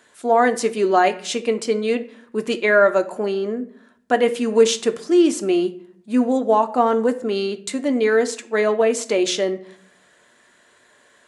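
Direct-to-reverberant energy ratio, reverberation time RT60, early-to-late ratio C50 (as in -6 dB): 7.5 dB, 0.60 s, 16.0 dB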